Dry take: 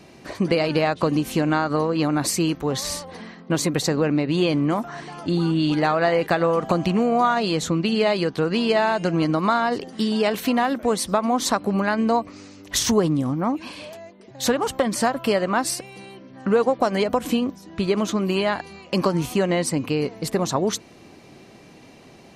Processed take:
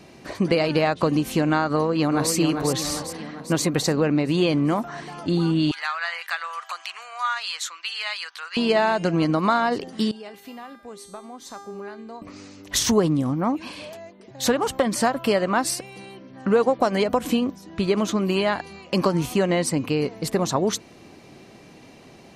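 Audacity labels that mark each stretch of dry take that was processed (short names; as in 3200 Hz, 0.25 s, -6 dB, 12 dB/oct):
1.710000	2.320000	echo throw 0.4 s, feedback 55%, level -6 dB
5.710000	8.570000	HPF 1200 Hz 24 dB/oct
10.110000	12.220000	resonator 400 Hz, decay 0.84 s, mix 90%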